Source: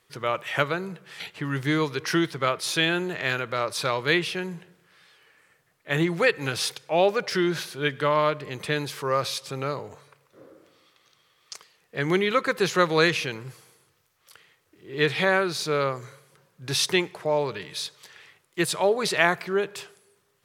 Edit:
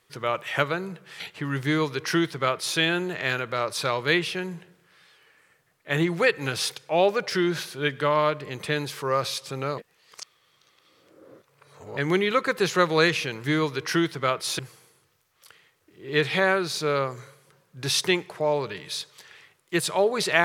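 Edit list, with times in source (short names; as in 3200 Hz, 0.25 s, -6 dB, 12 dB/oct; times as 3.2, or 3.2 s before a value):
1.63–2.78 copy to 13.44
9.78–11.97 reverse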